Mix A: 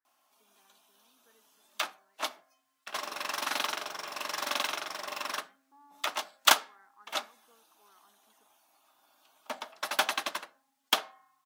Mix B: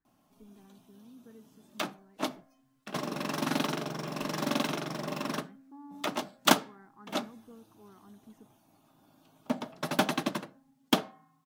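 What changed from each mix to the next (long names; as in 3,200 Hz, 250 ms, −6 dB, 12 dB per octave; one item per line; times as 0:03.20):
background −3.5 dB
master: remove high-pass filter 940 Hz 12 dB per octave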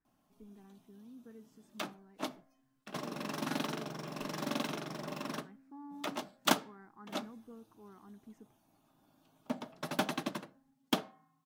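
background −6.0 dB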